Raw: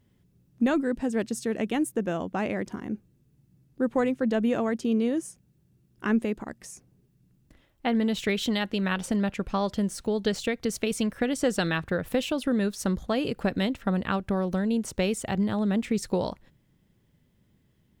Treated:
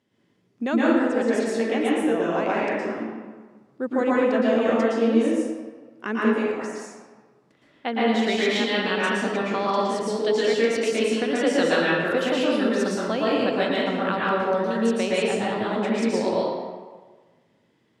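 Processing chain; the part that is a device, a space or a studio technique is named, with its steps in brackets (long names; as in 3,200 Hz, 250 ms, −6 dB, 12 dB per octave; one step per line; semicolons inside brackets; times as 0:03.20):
supermarket ceiling speaker (band-pass filter 290–6,600 Hz; convolution reverb RT60 1.4 s, pre-delay 108 ms, DRR −7 dB)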